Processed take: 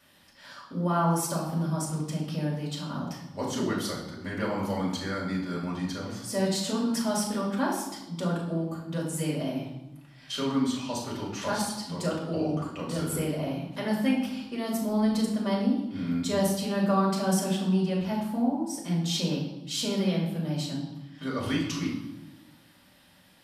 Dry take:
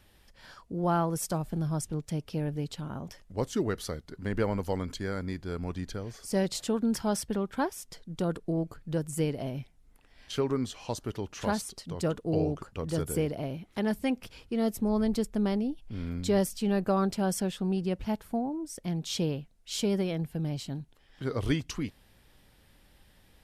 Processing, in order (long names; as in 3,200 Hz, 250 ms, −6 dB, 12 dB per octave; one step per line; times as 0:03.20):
high-pass filter 180 Hz 12 dB per octave
parametric band 440 Hz −9.5 dB 0.38 octaves
in parallel at −2 dB: brickwall limiter −27.5 dBFS, peak gain reduction 11 dB
on the sum: convolution reverb RT60 0.95 s, pre-delay 3 ms, DRR −4.5 dB
level −7 dB